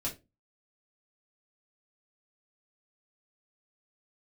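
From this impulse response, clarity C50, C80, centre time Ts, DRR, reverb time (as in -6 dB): 12.5 dB, 21.0 dB, 17 ms, -5.5 dB, 0.25 s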